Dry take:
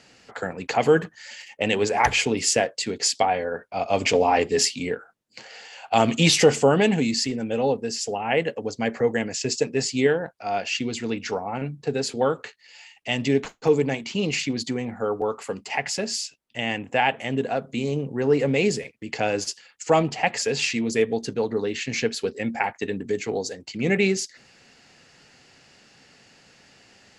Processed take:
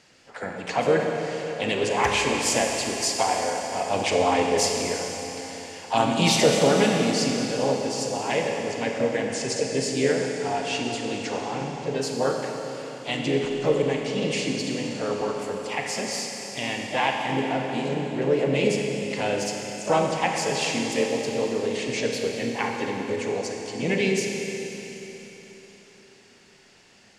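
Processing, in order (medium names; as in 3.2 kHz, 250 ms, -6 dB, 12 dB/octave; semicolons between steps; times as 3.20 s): harmony voices +3 st -7 dB, +5 st -13 dB; Schroeder reverb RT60 3.9 s, combs from 30 ms, DRR 1 dB; trim -4.5 dB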